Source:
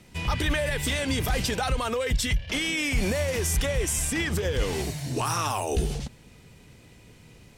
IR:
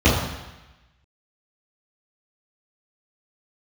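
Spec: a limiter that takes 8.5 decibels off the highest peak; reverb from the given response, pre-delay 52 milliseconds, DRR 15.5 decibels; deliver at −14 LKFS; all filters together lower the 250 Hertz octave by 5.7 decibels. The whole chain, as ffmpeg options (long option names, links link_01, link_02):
-filter_complex "[0:a]equalizer=frequency=250:width_type=o:gain=-8,alimiter=limit=-24dB:level=0:latency=1,asplit=2[link_01][link_02];[1:a]atrim=start_sample=2205,adelay=52[link_03];[link_02][link_03]afir=irnorm=-1:irlink=0,volume=-37.5dB[link_04];[link_01][link_04]amix=inputs=2:normalize=0,volume=18dB"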